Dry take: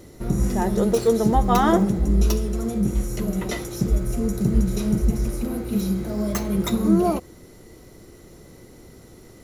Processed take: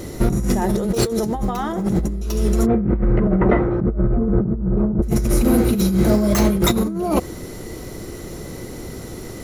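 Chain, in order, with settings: 2.65–5.02 s: low-pass 2 kHz -> 1.1 kHz 24 dB/octave; compressor with a negative ratio -27 dBFS, ratio -1; trim +8.5 dB

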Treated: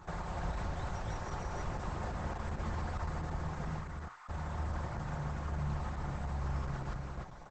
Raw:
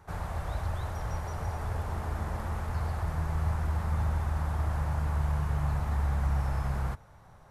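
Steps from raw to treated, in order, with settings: peaking EQ 5.7 kHz +2 dB 0.25 oct; band-stop 5.6 kHz, Q 20; comb 5.6 ms, depth 44%; in parallel at -3 dB: compression 10:1, threshold -44 dBFS, peak gain reduction 18.5 dB; on the sum: peak limiter -30 dBFS, peak gain reduction 11 dB; 3.79–4.29 s: ladder high-pass 980 Hz, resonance 40%; flange 0.34 Hz, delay 3.9 ms, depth 7 ms, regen +84%; on a send: delay 289 ms -3.5 dB; on the sum: trim +4 dB; Opus 10 kbps 48 kHz

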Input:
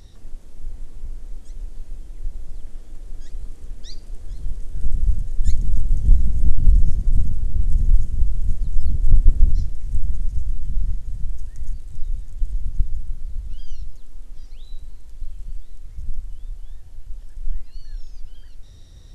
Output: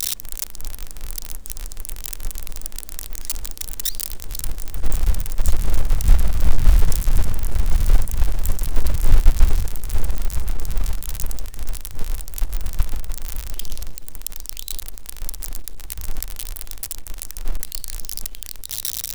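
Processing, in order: zero-crossing glitches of -11 dBFS; companded quantiser 6-bit

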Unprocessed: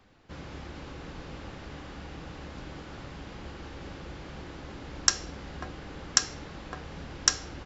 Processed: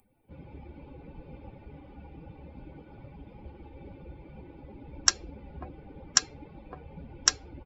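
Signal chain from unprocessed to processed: expander on every frequency bin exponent 2; upward compressor, threshold -58 dBFS; trim +2 dB

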